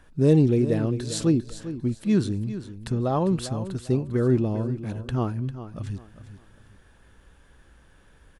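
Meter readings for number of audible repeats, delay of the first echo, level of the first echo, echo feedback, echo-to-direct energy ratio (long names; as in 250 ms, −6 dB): 3, 399 ms, −12.5 dB, 29%, −12.0 dB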